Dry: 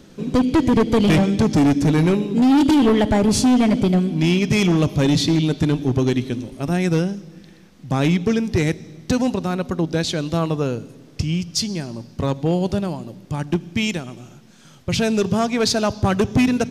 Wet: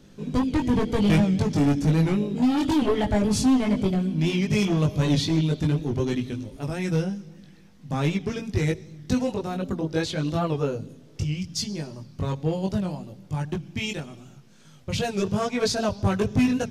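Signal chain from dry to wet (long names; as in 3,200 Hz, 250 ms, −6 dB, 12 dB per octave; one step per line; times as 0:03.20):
multi-voice chorus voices 6, 0.81 Hz, delay 20 ms, depth 1.2 ms
wow of a warped record 78 rpm, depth 100 cents
level −3.5 dB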